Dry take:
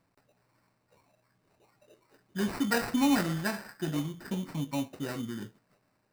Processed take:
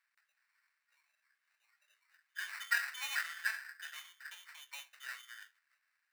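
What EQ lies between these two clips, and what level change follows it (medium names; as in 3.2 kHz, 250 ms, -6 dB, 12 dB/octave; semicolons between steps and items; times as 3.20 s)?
ladder high-pass 1.5 kHz, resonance 55%; +3.5 dB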